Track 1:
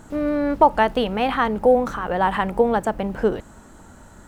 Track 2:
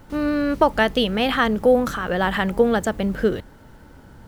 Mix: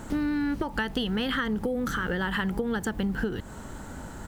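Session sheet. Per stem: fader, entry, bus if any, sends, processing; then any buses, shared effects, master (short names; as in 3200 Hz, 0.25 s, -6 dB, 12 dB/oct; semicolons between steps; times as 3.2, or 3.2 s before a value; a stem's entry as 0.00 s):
+3.0 dB, 0.00 s, no send, compressor 2:1, threshold -26 dBFS, peak gain reduction 9.5 dB
+2.5 dB, 0.4 ms, no send, compressor, threshold -18 dBFS, peak gain reduction 8 dB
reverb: off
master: compressor 3:1, threshold -28 dBFS, peak gain reduction 11 dB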